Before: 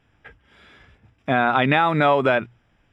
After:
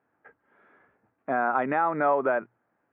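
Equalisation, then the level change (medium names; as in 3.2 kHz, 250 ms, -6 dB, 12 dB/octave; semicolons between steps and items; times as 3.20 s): high-pass 300 Hz 12 dB/octave; low-pass 1.6 kHz 24 dB/octave; -5.0 dB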